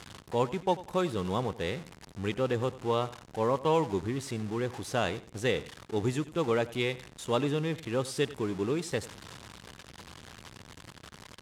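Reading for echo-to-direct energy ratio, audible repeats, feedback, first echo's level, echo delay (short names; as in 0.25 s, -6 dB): -17.5 dB, 2, 25%, -17.5 dB, 92 ms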